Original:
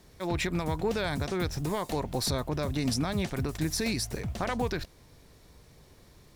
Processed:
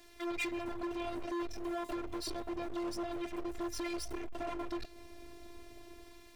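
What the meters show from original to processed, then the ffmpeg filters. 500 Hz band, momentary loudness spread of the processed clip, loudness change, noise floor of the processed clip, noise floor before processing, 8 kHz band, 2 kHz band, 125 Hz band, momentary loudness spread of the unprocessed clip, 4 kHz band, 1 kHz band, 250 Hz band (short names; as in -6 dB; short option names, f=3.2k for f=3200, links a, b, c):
-7.5 dB, 17 LU, -8.5 dB, -56 dBFS, -57 dBFS, -12.0 dB, -8.0 dB, -23.0 dB, 4 LU, -11.0 dB, -7.0 dB, -6.5 dB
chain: -filter_complex "[0:a]acrossover=split=690[a][b];[a]dynaudnorm=f=270:g=5:m=10dB[c];[b]flanger=delay=9.8:depth=1.9:regen=-78:speed=0.52:shape=triangular[d];[c][d]amix=inputs=2:normalize=0,equalizer=f=2.4k:t=o:w=1:g=7.5,acompressor=threshold=-30dB:ratio=3,afftfilt=real='hypot(re,im)*cos(PI*b)':imag='0':win_size=512:overlap=0.75,asoftclip=type=hard:threshold=-36.5dB,lowshelf=f=430:g=-8,volume=6.5dB"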